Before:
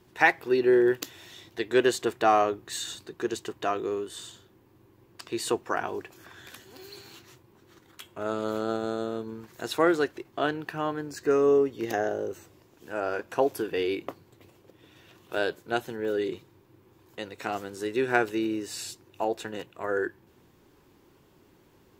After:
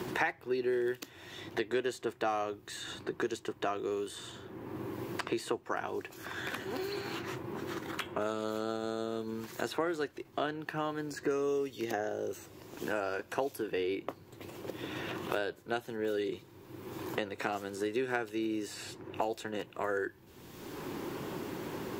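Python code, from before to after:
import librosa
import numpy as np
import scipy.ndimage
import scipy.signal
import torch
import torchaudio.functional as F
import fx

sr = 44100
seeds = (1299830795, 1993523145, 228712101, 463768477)

y = fx.band_squash(x, sr, depth_pct=100)
y = y * 10.0 ** (-6.0 / 20.0)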